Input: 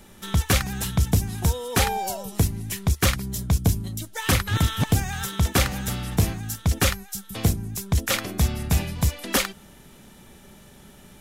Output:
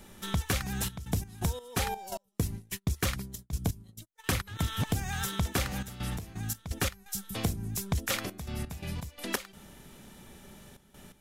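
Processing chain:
0:02.17–0:04.47: noise gate −28 dBFS, range −38 dB
downward compressor 5 to 1, threshold −24 dBFS, peak gain reduction 8.5 dB
gate pattern "xxxxx.x.x.x.xx" 85 BPM −12 dB
level −2.5 dB

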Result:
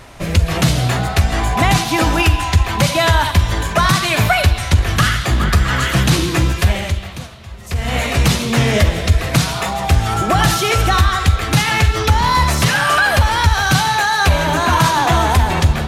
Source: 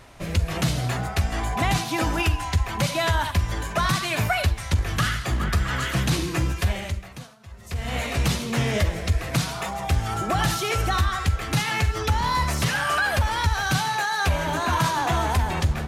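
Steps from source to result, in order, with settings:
on a send: parametric band 3,600 Hz +14 dB 0.94 octaves + convolution reverb RT60 2.7 s, pre-delay 113 ms, DRR 14 dB
on the sum: level +9 dB

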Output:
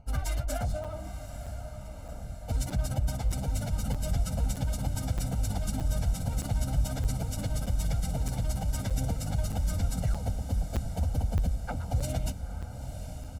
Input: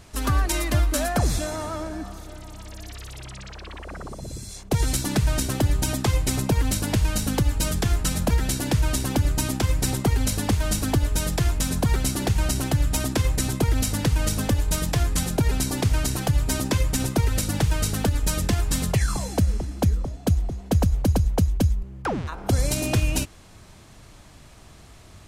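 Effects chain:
adaptive Wiener filter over 25 samples
comb filter 1.4 ms, depth 93%
brickwall limiter −12.5 dBFS, peak gain reduction 6 dB
time stretch by phase vocoder 0.53×
on a send: feedback delay with all-pass diffusion 918 ms, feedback 65%, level −10 dB
on the sum: regular buffer underruns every 0.62 s, samples 256, zero, from 0:00.84
level −6 dB

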